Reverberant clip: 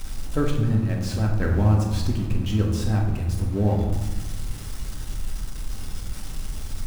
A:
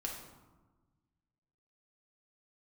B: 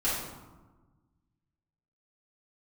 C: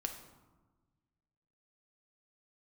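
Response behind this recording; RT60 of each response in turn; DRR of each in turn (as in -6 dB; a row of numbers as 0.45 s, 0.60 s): A; 1.3 s, 1.3 s, 1.3 s; -1.0 dB, -11.0 dB, 4.0 dB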